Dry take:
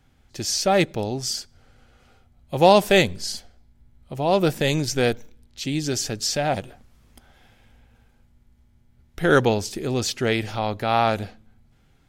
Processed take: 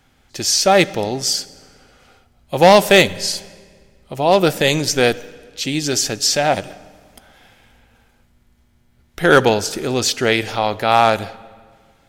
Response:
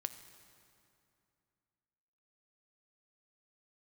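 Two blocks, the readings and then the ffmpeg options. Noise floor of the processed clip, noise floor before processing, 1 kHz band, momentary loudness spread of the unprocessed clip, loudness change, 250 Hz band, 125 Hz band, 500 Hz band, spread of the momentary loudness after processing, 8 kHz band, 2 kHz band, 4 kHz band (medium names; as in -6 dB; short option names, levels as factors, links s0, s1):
-57 dBFS, -59 dBFS, +6.5 dB, 13 LU, +6.0 dB, +3.5 dB, +1.5 dB, +5.5 dB, 11 LU, +8.5 dB, +7.5 dB, +8.0 dB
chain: -filter_complex "[0:a]lowshelf=f=270:g=-9,asoftclip=type=hard:threshold=0.282,asplit=2[s0][s1];[1:a]atrim=start_sample=2205,asetrate=66150,aresample=44100[s2];[s1][s2]afir=irnorm=-1:irlink=0,volume=1.19[s3];[s0][s3]amix=inputs=2:normalize=0,volume=1.58"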